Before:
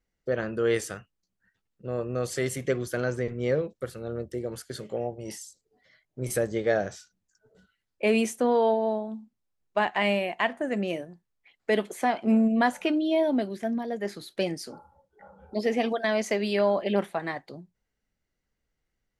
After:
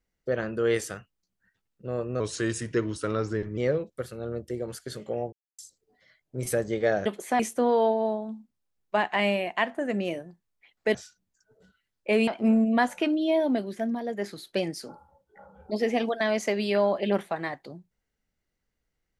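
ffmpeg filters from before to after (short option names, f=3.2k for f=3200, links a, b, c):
-filter_complex "[0:a]asplit=9[a][b][c][d][e][f][g][h][i];[a]atrim=end=2.204[j];[b]atrim=start=2.2:end=3.41,asetpts=PTS-STARTPTS,asetrate=38808,aresample=44100[k];[c]atrim=start=3.406:end=5.16,asetpts=PTS-STARTPTS,afade=t=out:st=1.75:d=0.004:c=hsin[l];[d]atrim=start=5.16:end=5.42,asetpts=PTS-STARTPTS,volume=0[m];[e]atrim=start=5.42:end=6.892,asetpts=PTS-STARTPTS,afade=t=in:d=0.004:c=hsin[n];[f]atrim=start=11.768:end=12.112[o];[g]atrim=start=8.218:end=11.772[p];[h]atrim=start=6.888:end=8.222[q];[i]atrim=start=12.108[r];[j][k]acrossfade=d=0.004:c1=hsin:c2=hsin[s];[l][m][n]concat=n=3:v=0:a=1[t];[s][t]acrossfade=d=0.004:c1=hsin:c2=hsin[u];[u][o]acrossfade=d=0.004:c1=hsin:c2=hsin[v];[v][p]acrossfade=d=0.004:c1=hsin:c2=hsin[w];[w][q]acrossfade=d=0.004:c1=hsin:c2=hsin[x];[x][r]acrossfade=d=0.004:c1=hsin:c2=hsin"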